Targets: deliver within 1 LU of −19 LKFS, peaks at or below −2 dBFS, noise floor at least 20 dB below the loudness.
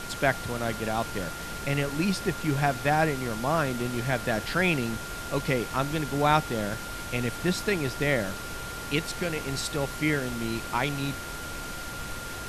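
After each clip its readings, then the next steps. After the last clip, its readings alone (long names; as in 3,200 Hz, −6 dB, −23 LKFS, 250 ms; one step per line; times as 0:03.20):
interfering tone 1,400 Hz; level of the tone −39 dBFS; background noise floor −37 dBFS; target noise floor −49 dBFS; integrated loudness −28.5 LKFS; sample peak −8.0 dBFS; target loudness −19.0 LKFS
→ notch filter 1,400 Hz, Q 30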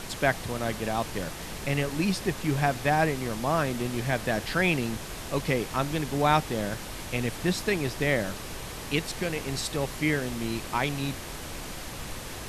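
interfering tone none found; background noise floor −39 dBFS; target noise floor −49 dBFS
→ noise reduction from a noise print 10 dB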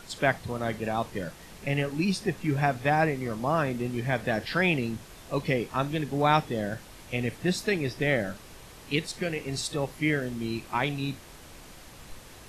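background noise floor −48 dBFS; target noise floor −49 dBFS
→ noise reduction from a noise print 6 dB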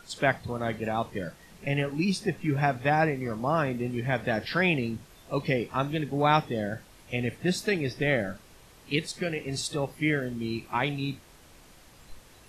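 background noise floor −54 dBFS; integrated loudness −29.0 LKFS; sample peak −8.5 dBFS; target loudness −19.0 LKFS
→ level +10 dB
brickwall limiter −2 dBFS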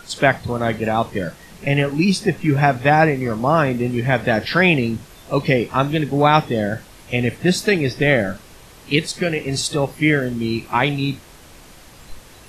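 integrated loudness −19.0 LKFS; sample peak −2.0 dBFS; background noise floor −44 dBFS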